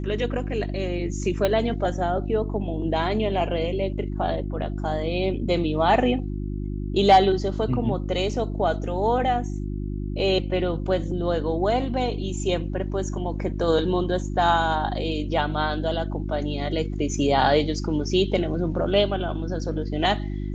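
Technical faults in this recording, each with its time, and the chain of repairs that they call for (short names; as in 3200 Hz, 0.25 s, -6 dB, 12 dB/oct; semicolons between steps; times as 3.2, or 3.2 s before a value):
hum 50 Hz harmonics 7 -29 dBFS
1.45 pop -9 dBFS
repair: de-click; de-hum 50 Hz, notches 7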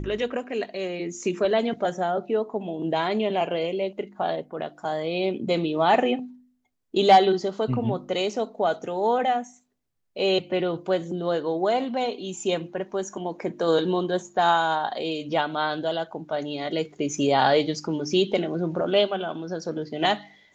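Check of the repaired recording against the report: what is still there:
1.45 pop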